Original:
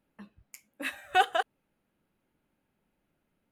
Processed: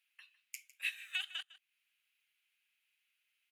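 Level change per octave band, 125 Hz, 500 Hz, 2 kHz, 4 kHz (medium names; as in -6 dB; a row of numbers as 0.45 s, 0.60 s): no reading, under -40 dB, -8.5 dB, -4.0 dB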